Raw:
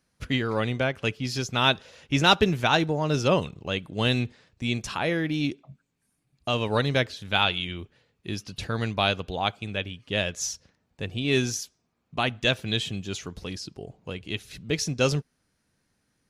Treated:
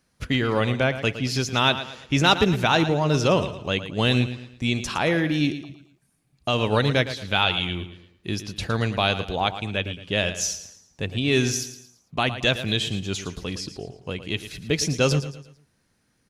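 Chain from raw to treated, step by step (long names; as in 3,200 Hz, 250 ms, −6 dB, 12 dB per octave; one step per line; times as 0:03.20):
in parallel at +2 dB: brickwall limiter −15.5 dBFS, peak gain reduction 9.5 dB
on the sum: repeating echo 112 ms, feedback 38%, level −12 dB
level −3 dB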